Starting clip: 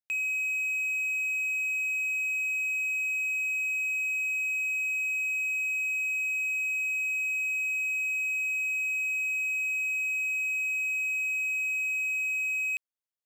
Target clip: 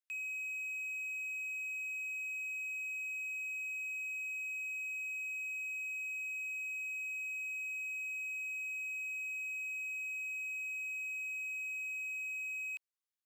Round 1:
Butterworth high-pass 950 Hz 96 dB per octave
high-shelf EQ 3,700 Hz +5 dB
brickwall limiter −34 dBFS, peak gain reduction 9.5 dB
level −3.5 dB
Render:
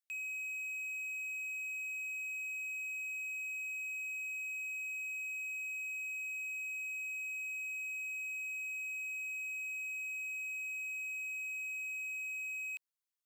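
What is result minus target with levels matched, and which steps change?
8,000 Hz band +2.5 dB
remove: high-shelf EQ 3,700 Hz +5 dB

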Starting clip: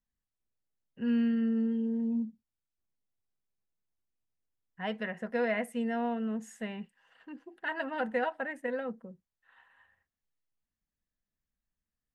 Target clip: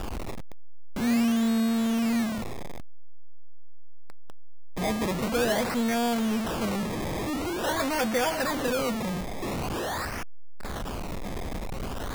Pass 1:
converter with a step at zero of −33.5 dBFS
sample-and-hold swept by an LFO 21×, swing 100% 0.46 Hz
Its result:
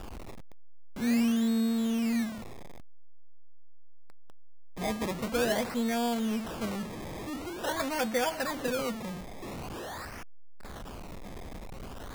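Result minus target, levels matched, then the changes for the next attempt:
converter with a step at zero: distortion −6 dB
change: converter with a step at zero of −24.5 dBFS

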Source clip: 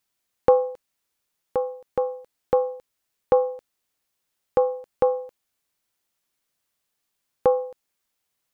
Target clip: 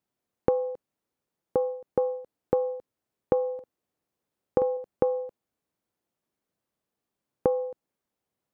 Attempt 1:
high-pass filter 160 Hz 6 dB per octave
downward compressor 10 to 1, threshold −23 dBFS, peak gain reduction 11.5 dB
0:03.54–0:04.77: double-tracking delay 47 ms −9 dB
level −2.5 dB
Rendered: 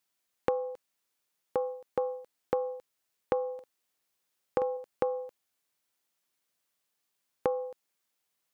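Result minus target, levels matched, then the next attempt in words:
1,000 Hz band +3.5 dB
high-pass filter 160 Hz 6 dB per octave
downward compressor 10 to 1, threshold −23 dBFS, peak gain reduction 11.5 dB
tilt shelving filter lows +10 dB, about 980 Hz
0:03.54–0:04.77: double-tracking delay 47 ms −9 dB
level −2.5 dB

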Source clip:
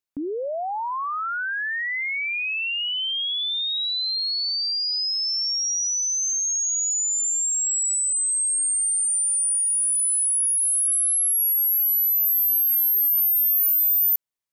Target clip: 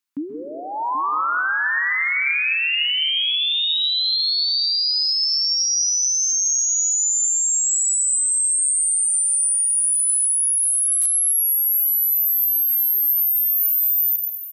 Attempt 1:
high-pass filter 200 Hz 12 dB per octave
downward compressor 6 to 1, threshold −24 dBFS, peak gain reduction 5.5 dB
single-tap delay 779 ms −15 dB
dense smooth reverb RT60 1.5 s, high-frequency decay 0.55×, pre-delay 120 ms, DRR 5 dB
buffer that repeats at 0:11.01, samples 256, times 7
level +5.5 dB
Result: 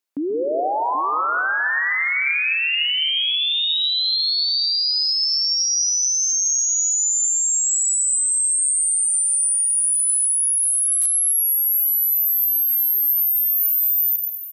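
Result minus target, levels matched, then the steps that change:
500 Hz band +11.5 dB
add after high-pass filter: flat-topped bell 530 Hz −12 dB 1.3 octaves

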